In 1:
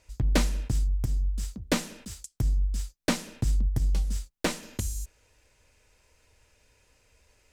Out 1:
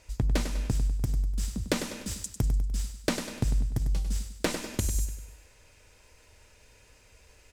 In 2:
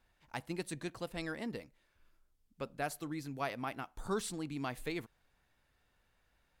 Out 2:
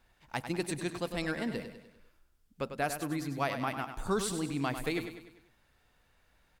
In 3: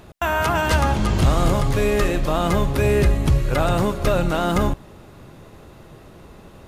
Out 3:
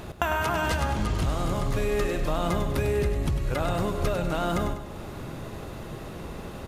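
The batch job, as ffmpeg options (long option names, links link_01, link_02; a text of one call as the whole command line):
ffmpeg -i in.wav -af "acompressor=threshold=-29dB:ratio=10,aecho=1:1:99|198|297|396|495:0.355|0.17|0.0817|0.0392|0.0188,volume=5.5dB" out.wav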